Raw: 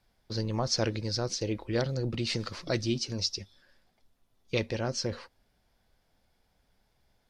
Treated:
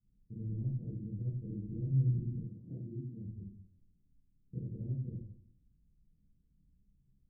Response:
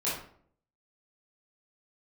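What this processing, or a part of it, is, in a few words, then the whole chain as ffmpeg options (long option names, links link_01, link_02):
club heard from the street: -filter_complex "[0:a]alimiter=level_in=1.5dB:limit=-24dB:level=0:latency=1:release=183,volume=-1.5dB,lowpass=frequency=230:width=0.5412,lowpass=frequency=230:width=1.3066[link_01];[1:a]atrim=start_sample=2205[link_02];[link_01][link_02]afir=irnorm=-1:irlink=0,asplit=3[link_03][link_04][link_05];[link_03]afade=type=out:start_time=2.45:duration=0.02[link_06];[link_04]highpass=frequency=170:poles=1,afade=type=in:start_time=2.45:duration=0.02,afade=type=out:start_time=3.26:duration=0.02[link_07];[link_05]afade=type=in:start_time=3.26:duration=0.02[link_08];[link_06][link_07][link_08]amix=inputs=3:normalize=0,volume=-4dB"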